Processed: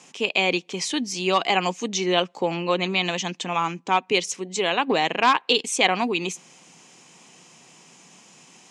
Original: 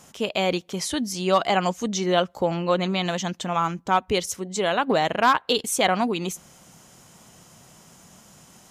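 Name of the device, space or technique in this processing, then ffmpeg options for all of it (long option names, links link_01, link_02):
television speaker: -af "highpass=frequency=180:width=0.5412,highpass=frequency=180:width=1.3066,equalizer=frequency=210:width_type=q:width=4:gain=-6,equalizer=frequency=610:width_type=q:width=4:gain=-8,equalizer=frequency=1400:width_type=q:width=4:gain=-7,equalizer=frequency=2500:width_type=q:width=4:gain=8,lowpass=frequency=8200:width=0.5412,lowpass=frequency=8200:width=1.3066,volume=2dB"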